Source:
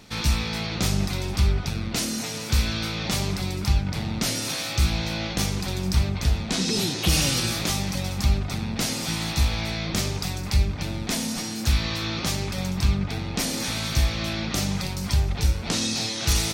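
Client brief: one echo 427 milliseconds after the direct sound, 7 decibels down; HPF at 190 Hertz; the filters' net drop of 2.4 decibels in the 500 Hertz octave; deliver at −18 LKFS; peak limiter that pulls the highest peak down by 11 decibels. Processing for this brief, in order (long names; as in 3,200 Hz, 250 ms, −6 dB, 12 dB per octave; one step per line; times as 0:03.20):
high-pass filter 190 Hz
parametric band 500 Hz −3 dB
brickwall limiter −19.5 dBFS
single-tap delay 427 ms −7 dB
level +11 dB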